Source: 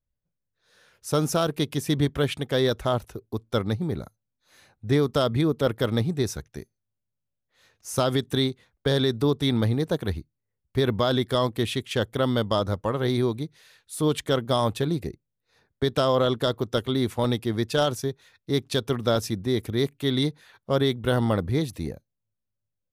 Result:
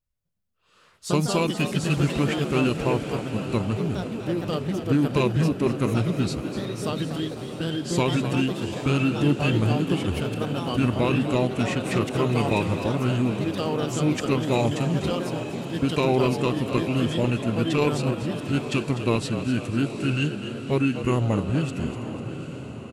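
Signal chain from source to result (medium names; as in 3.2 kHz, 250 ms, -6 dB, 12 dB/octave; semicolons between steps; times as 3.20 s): echo that smears into a reverb 827 ms, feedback 53%, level -10.5 dB; formant shift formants -5 st; ever faster or slower copies 152 ms, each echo +3 st, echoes 2, each echo -6 dB; frequency-shifting echo 248 ms, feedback 46%, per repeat +73 Hz, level -11 dB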